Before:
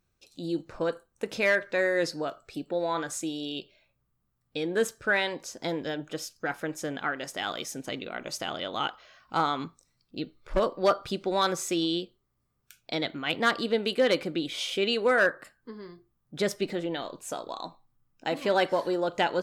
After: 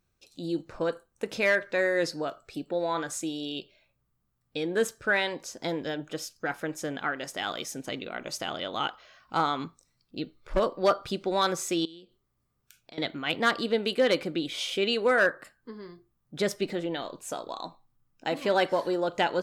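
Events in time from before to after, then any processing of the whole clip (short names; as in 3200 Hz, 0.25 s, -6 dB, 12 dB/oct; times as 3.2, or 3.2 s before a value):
11.85–12.98 compressor 3:1, threshold -50 dBFS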